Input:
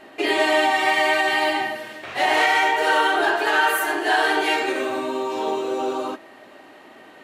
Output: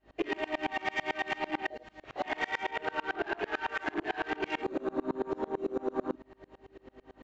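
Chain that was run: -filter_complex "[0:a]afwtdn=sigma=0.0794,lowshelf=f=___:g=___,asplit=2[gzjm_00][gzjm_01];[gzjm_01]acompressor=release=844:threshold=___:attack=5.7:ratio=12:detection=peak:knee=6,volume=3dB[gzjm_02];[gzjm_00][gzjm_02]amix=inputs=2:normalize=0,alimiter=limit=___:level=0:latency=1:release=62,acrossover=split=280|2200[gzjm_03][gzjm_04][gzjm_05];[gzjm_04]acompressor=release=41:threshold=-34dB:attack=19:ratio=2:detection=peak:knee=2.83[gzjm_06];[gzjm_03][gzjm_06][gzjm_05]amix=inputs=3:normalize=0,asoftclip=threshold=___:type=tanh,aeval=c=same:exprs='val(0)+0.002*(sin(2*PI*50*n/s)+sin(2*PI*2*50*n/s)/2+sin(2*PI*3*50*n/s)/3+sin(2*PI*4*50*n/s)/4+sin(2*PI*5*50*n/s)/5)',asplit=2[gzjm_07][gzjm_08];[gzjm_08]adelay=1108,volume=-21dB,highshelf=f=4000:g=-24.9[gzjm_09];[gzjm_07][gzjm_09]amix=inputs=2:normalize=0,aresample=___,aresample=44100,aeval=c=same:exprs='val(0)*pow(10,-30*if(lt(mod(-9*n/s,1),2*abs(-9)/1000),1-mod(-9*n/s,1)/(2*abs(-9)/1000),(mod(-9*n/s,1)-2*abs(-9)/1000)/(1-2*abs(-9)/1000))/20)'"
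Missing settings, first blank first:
350, 7.5, -26dB, -11dB, -19dB, 16000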